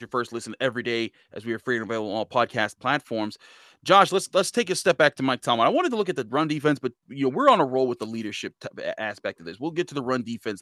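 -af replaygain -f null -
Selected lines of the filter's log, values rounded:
track_gain = +3.4 dB
track_peak = 0.463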